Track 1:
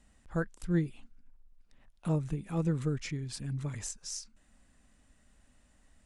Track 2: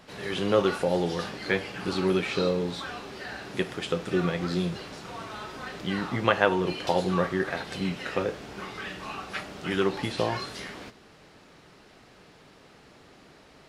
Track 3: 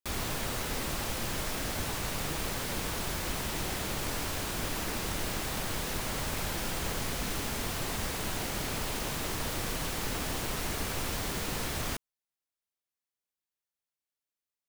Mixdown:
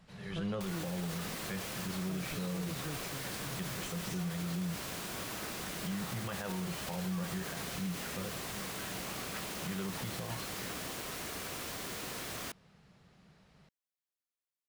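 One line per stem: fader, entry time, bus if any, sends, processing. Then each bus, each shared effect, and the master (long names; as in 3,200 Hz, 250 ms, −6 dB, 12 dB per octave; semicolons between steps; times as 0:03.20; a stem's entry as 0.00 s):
−10.0 dB, 0.00 s, no send, no processing
−12.5 dB, 0.00 s, no send, low shelf with overshoot 230 Hz +6.5 dB, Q 3
−5.5 dB, 0.55 s, no send, high-pass filter 210 Hz 6 dB per octave; notch filter 870 Hz, Q 12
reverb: not used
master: brickwall limiter −29 dBFS, peak gain reduction 10.5 dB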